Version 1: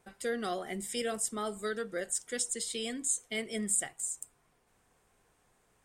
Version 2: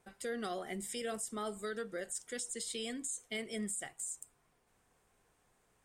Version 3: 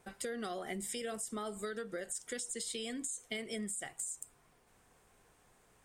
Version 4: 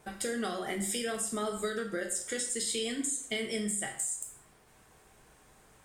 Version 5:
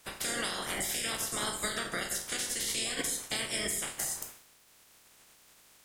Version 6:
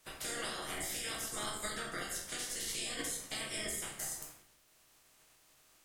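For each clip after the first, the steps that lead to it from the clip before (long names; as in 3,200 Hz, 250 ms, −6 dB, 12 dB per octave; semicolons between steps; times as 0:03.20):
brickwall limiter −26.5 dBFS, peak gain reduction 10 dB; level −3 dB
downward compressor, threshold −43 dBFS, peak gain reduction 8.5 dB; level +6 dB
dense smooth reverb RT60 0.51 s, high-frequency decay 0.95×, DRR 2.5 dB; level +5 dB
ceiling on every frequency bin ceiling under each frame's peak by 26 dB
rectangular room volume 56 cubic metres, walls mixed, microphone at 0.57 metres; level −8 dB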